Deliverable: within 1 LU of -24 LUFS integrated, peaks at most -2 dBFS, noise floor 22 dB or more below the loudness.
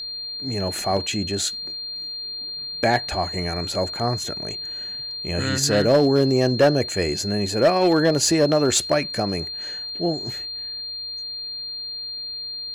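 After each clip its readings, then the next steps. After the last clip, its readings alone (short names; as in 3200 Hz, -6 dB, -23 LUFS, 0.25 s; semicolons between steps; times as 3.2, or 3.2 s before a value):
clipped 0.3%; flat tops at -10.5 dBFS; steady tone 4200 Hz; tone level -29 dBFS; loudness -22.5 LUFS; peak -10.5 dBFS; loudness target -24.0 LUFS
-> clip repair -10.5 dBFS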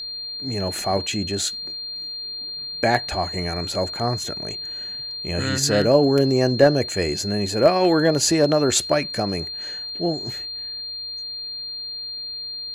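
clipped 0.0%; steady tone 4200 Hz; tone level -29 dBFS
-> notch 4200 Hz, Q 30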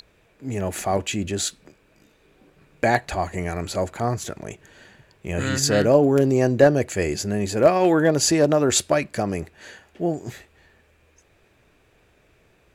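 steady tone none; loudness -21.5 LUFS; peak -3.0 dBFS; loudness target -24.0 LUFS
-> gain -2.5 dB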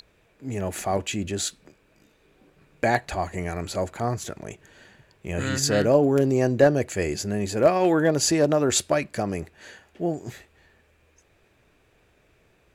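loudness -24.0 LUFS; peak -5.5 dBFS; noise floor -63 dBFS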